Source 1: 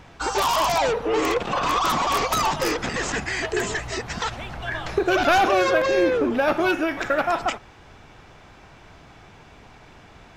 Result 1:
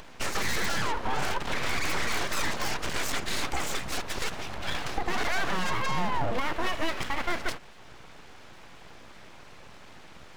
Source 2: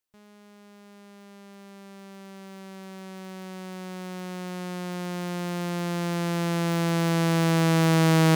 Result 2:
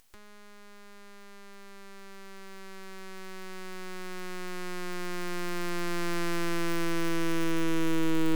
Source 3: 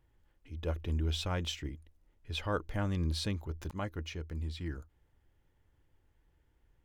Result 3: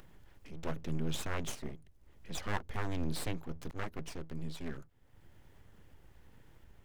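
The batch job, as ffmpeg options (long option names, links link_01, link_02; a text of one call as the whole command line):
ffmpeg -i in.wav -filter_complex "[0:a]acrossover=split=190[link_01][link_02];[link_02]alimiter=limit=-17.5dB:level=0:latency=1:release=164[link_03];[link_01][link_03]amix=inputs=2:normalize=0,acompressor=mode=upward:threshold=-43dB:ratio=2.5,aeval=exprs='abs(val(0))':channel_layout=same" out.wav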